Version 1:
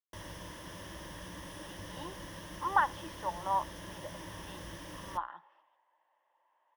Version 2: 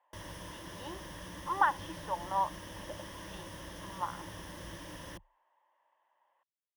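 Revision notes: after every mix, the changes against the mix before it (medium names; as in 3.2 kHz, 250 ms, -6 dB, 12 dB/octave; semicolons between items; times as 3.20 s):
speech: entry -1.15 s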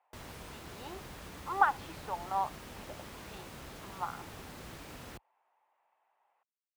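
master: remove rippled EQ curve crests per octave 1.2, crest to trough 11 dB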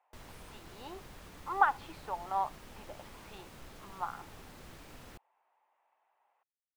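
background -5.0 dB; master: remove high-pass 44 Hz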